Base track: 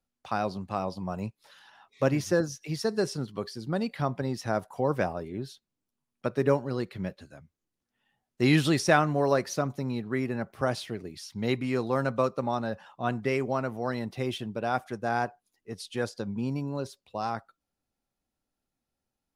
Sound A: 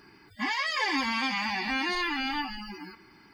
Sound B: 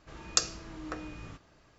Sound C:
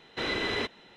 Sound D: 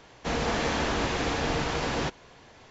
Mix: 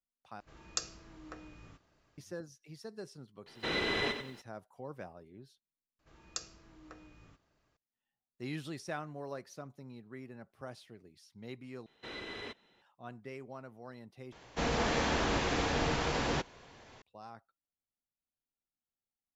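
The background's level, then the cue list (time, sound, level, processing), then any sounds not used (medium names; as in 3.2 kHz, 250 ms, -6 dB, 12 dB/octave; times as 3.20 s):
base track -18 dB
0.40 s: replace with B -9.5 dB
3.46 s: add C -3 dB + bit-crushed delay 93 ms, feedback 35%, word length 10-bit, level -8 dB
5.99 s: replace with B -14 dB
11.86 s: replace with C -13.5 dB
14.32 s: replace with D -3.5 dB
not used: A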